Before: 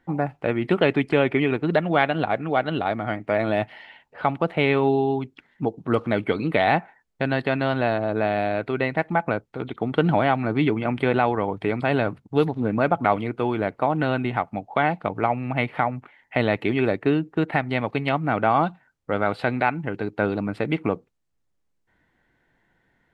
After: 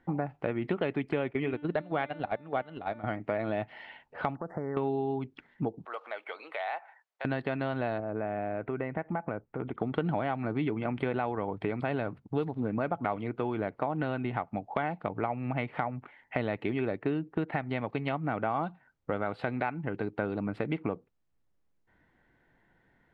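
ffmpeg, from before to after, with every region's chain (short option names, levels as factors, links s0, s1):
-filter_complex "[0:a]asettb=1/sr,asplit=3[s0][s1][s2];[s0]atrim=end=1.314[s3];[s1]atrim=start=1.31:end=3.04,asetpts=PTS-STARTPTS,afade=t=in:d=0.004:c=qsin,afade=t=out:st=1.726:d=0.004:c=qsin,agate=range=0.178:threshold=0.0708:ratio=16:release=100:detection=peak,bandreject=f=295.3:t=h:w=4,bandreject=f=590.6:t=h:w=4,bandreject=f=885.9:t=h:w=4,bandreject=f=1181.2:t=h:w=4,bandreject=f=1476.5:t=h:w=4,bandreject=f=1771.8:t=h:w=4,bandreject=f=2067.1:t=h:w=4,bandreject=f=2362.4:t=h:w=4,bandreject=f=2657.7:t=h:w=4,bandreject=f=2953:t=h:w=4,bandreject=f=3248.3:t=h:w=4,bandreject=f=3543.6:t=h:w=4,bandreject=f=3838.9:t=h:w=4,bandreject=f=4134.2:t=h:w=4,bandreject=f=4429.5:t=h:w=4,bandreject=f=4724.8:t=h:w=4,bandreject=f=5020.1:t=h:w=4,bandreject=f=5315.4:t=h:w=4,bandreject=f=5610.7:t=h:w=4,bandreject=f=5906:t=h:w=4,bandreject=f=6201.3:t=h:w=4,bandreject=f=6496.6:t=h:w=4,bandreject=f=6791.9:t=h:w=4,bandreject=f=7087.2:t=h:w=4,bandreject=f=7382.5:t=h:w=4,bandreject=f=7677.8:t=h:w=4,bandreject=f=7973.1:t=h:w=4[s4];[s2]atrim=start=3.036[s5];[s3][s4]acrossfade=d=0.004:c1=hsin:c2=qsin[s6];[s6][s5]acrossfade=d=0.004:c1=qsin:c2=hsin,asettb=1/sr,asplit=3[s7][s8][s9];[s7]atrim=end=4.354[s10];[s8]atrim=start=4.35:end=4.77,asetpts=PTS-STARTPTS,afade=t=in:d=0.004:c=qsin,afade=t=out:st=0.416:d=0.004:c=qsin,acompressor=threshold=0.0282:ratio=2.5:attack=3.2:release=140:knee=1:detection=peak,asuperstop=centerf=3100:order=12:qfactor=0.94[s11];[s9]atrim=start=4.766[s12];[s10][s11]acrossfade=d=0.004:c1=hsin:c2=qsin[s13];[s13][s12]acrossfade=d=0.004:c1=qsin:c2=hsin,asettb=1/sr,asplit=3[s14][s15][s16];[s14]atrim=end=5.854[s17];[s15]atrim=start=5.85:end=7.25,asetpts=PTS-STARTPTS,afade=t=in:d=0.004:c=qsin,afade=t=out:st=1.396:d=0.004:c=qsin,highpass=f=620:w=0.5412,highpass=f=620:w=1.3066,acompressor=threshold=0.00355:ratio=1.5:attack=3.2:release=140:knee=1:detection=peak[s18];[s16]atrim=start=7.246[s19];[s17][s18]acrossfade=d=0.004:c1=hsin:c2=qsin[s20];[s20][s19]acrossfade=d=0.004:c1=qsin:c2=hsin,asettb=1/sr,asplit=3[s21][s22][s23];[s21]atrim=end=8.004[s24];[s22]atrim=start=8:end=9.78,asetpts=PTS-STARTPTS,afade=t=in:d=0.004:c=qsin,afade=t=out:st=1.776:d=0.004:c=qsin,lowpass=f=2800:w=0.5412,lowpass=f=2800:w=1.3066,aemphasis=mode=reproduction:type=75kf,acompressor=threshold=0.0251:ratio=1.5:attack=3.2:release=140:knee=1:detection=peak[s25];[s23]atrim=start=9.776[s26];[s24][s25]acrossfade=d=0.004:c1=hsin:c2=qsin[s27];[s27][s26]acrossfade=d=0.004:c1=qsin:c2=hsin,lowpass=f=2400:p=1,acompressor=threshold=0.0316:ratio=3"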